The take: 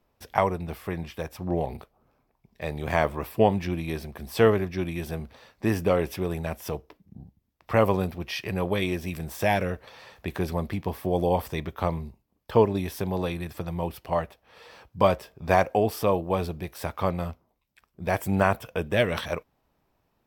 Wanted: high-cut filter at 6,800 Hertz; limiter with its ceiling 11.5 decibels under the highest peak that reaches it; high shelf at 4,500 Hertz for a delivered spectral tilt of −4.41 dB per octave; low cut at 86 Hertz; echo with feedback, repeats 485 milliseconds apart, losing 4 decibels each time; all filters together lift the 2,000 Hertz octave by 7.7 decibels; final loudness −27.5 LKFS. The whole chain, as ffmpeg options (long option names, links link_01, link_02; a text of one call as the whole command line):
ffmpeg -i in.wav -af "highpass=86,lowpass=6800,equalizer=frequency=2000:width_type=o:gain=9,highshelf=frequency=4500:gain=4,alimiter=limit=-13.5dB:level=0:latency=1,aecho=1:1:485|970|1455|1940|2425|2910|3395|3880|4365:0.631|0.398|0.25|0.158|0.0994|0.0626|0.0394|0.0249|0.0157,volume=0.5dB" out.wav